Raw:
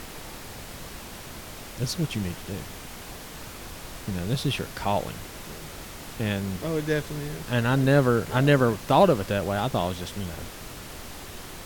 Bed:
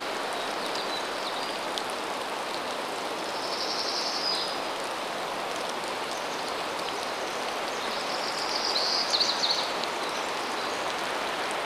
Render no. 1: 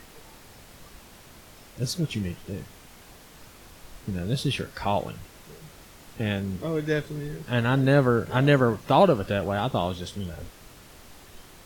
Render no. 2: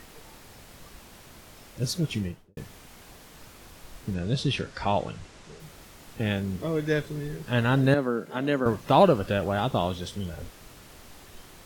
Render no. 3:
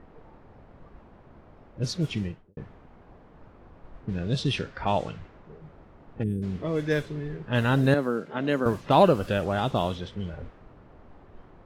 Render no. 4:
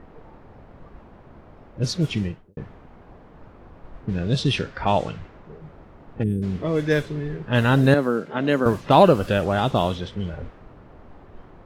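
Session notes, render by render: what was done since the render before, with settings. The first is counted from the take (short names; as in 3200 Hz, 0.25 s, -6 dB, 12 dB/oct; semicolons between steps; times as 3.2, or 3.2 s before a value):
noise print and reduce 9 dB
2.16–2.57 studio fade out; 4.14–5.6 LPF 8300 Hz 24 dB/oct; 7.94–8.66 ladder high-pass 170 Hz, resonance 30%
low-pass opened by the level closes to 870 Hz, open at -20.5 dBFS; 6.23–6.43 spectral gain 480–8000 Hz -30 dB
gain +5 dB; limiter -3 dBFS, peak gain reduction 1 dB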